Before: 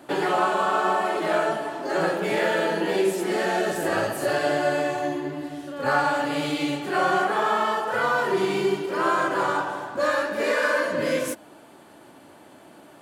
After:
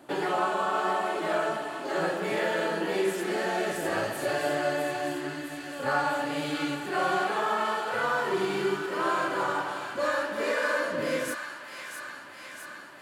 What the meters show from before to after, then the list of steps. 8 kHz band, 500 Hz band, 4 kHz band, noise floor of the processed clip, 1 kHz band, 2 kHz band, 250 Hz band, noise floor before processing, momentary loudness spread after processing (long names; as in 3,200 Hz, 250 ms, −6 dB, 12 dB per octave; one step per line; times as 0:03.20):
−3.5 dB, −5.0 dB, −3.5 dB, −43 dBFS, −4.5 dB, −4.0 dB, −5.0 dB, −49 dBFS, 11 LU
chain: delay with a high-pass on its return 658 ms, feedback 69%, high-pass 1,500 Hz, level −6 dB
level −5 dB